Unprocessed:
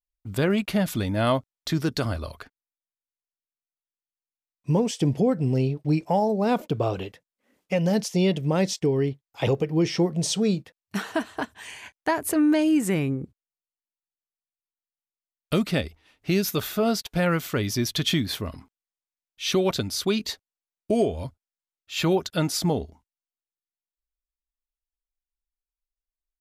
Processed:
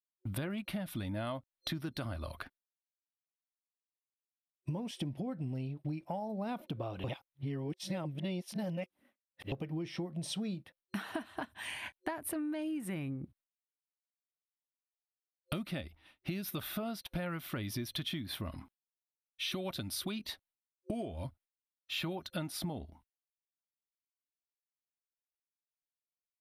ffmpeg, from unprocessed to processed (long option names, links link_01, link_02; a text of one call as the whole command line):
ffmpeg -i in.wav -filter_complex "[0:a]asettb=1/sr,asplit=3[link_01][link_02][link_03];[link_01]atrim=end=19.514[link_04];[link_02]atrim=start=19.51:end=20.12,asetpts=PTS-STARTPTS,afade=type=in:duration=0.004:curve=qsin,afade=type=out:start_time=0.606:duration=0.004:curve=qsin,highshelf=frequency=5100:gain=4.5[link_05];[link_03]atrim=start=20.116[link_06];[link_04][link_05]acrossfade=duration=0.004:curve1=hsin:curve2=qsin[link_07];[link_07][link_06]acrossfade=duration=0.004:curve1=qsin:curve2=hsin,asplit=3[link_08][link_09][link_10];[link_08]atrim=end=7.042[link_11];[link_09]atrim=start=7.038:end=9.522,asetpts=PTS-STARTPTS,areverse[link_12];[link_10]atrim=start=9.518[link_13];[link_11][link_12]acrossfade=duration=0.004:curve1=hsin:curve2=hsin[link_14];[link_14][link_13]acrossfade=duration=0.004:curve1=hsin:curve2=hsin,agate=range=-33dB:threshold=-52dB:ratio=3:detection=peak,superequalizer=7b=0.398:14b=0.501:15b=0.251,acompressor=threshold=-35dB:ratio=12" out.wav